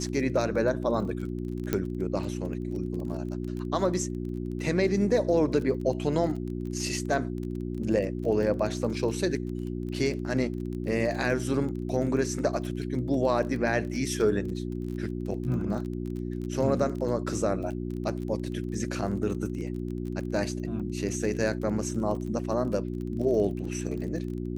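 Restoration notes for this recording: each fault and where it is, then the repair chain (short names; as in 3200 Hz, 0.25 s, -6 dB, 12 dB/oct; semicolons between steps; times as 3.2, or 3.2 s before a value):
crackle 27/s -35 dBFS
hum 60 Hz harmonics 6 -33 dBFS
1.73 pop -12 dBFS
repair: de-click; de-hum 60 Hz, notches 6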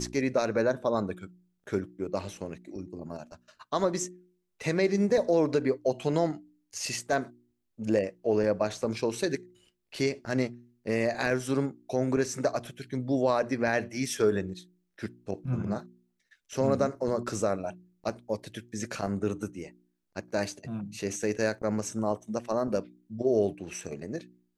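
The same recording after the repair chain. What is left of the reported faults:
none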